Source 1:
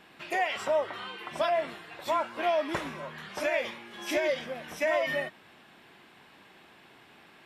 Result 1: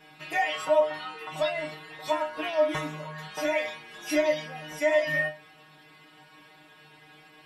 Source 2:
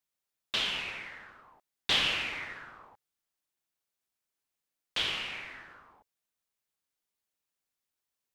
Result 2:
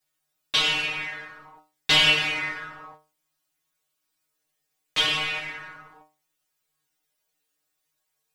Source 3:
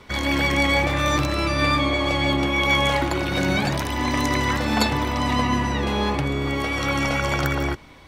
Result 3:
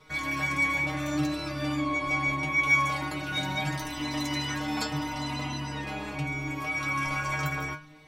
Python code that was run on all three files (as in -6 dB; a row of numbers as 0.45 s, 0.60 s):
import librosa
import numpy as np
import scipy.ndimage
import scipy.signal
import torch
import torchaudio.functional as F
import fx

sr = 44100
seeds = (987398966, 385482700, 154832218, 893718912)

y = fx.dynamic_eq(x, sr, hz=470.0, q=3.6, threshold_db=-44.0, ratio=4.0, max_db=-5)
y = fx.stiff_resonator(y, sr, f0_hz=150.0, decay_s=0.33, stiffness=0.002)
y = y * 10.0 ** (-30 / 20.0) / np.sqrt(np.mean(np.square(y)))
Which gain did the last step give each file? +13.5 dB, +21.0 dB, +4.5 dB